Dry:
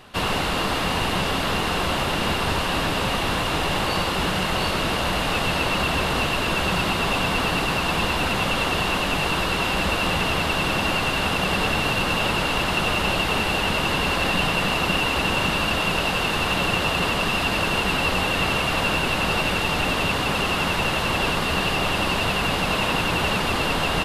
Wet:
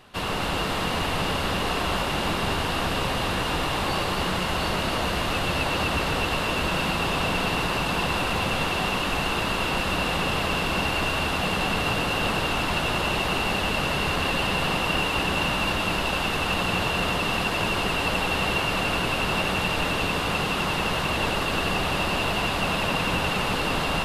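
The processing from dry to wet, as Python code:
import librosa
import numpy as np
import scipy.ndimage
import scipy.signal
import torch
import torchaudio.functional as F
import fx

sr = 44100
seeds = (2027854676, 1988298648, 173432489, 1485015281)

y = fx.echo_alternate(x, sr, ms=128, hz=1400.0, feedback_pct=79, wet_db=-2.5)
y = y * 10.0 ** (-5.0 / 20.0)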